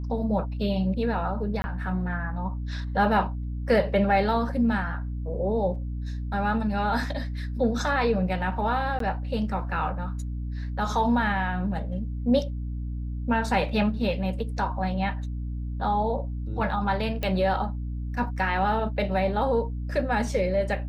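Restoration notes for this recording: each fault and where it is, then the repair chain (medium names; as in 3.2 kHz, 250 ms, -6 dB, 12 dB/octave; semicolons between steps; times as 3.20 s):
hum 60 Hz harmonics 5 -31 dBFS
1.62–1.64 s: dropout 20 ms
8.99–9.00 s: dropout 13 ms
17.23 s: pop -15 dBFS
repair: de-click; de-hum 60 Hz, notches 5; interpolate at 1.62 s, 20 ms; interpolate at 8.99 s, 13 ms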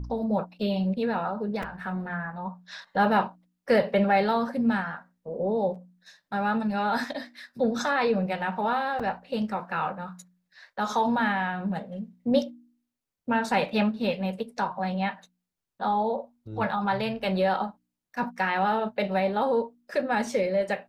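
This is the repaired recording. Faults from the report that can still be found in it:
nothing left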